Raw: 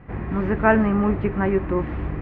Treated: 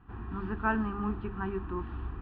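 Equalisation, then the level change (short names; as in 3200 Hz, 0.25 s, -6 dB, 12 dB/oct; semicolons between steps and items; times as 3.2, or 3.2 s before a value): bell 150 Hz -8.5 dB 0.53 oct; notches 50/100/150/200/250/300 Hz; fixed phaser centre 2100 Hz, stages 6; -7.5 dB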